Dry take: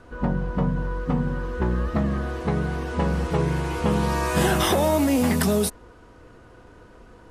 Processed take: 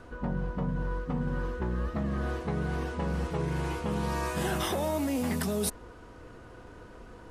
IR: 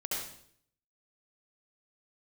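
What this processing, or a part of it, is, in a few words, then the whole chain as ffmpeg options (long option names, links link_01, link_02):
compression on the reversed sound: -af "areverse,acompressor=threshold=-28dB:ratio=5,areverse"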